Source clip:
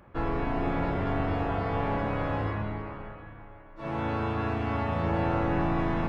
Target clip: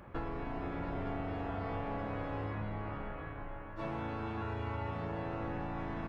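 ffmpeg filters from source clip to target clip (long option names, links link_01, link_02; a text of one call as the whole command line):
ffmpeg -i in.wav -filter_complex "[0:a]asettb=1/sr,asplit=3[link_01][link_02][link_03];[link_01]atrim=end=4.414[link_04];[link_02]atrim=start=4.41:end=4.91,asetpts=PTS-STARTPTS,afade=type=in:duration=0.004:curve=qsin,afade=type=out:start_time=0.496:duration=0.004:curve=qsin,aecho=1:1:2.1:0.69,atrim=end_sample=22050[link_05];[link_03]atrim=start=4.906[link_06];[link_04][link_05]acrossfade=duration=0.004:curve1=hsin:curve2=qsin[link_07];[link_07][link_06]acrossfade=duration=0.004:curve1=qsin:curve2=hsin,acompressor=threshold=-38dB:ratio=8,asplit=2[link_08][link_09];[link_09]adelay=460.6,volume=-8dB,highshelf=frequency=4000:gain=-10.4[link_10];[link_08][link_10]amix=inputs=2:normalize=0,volume=2dB" out.wav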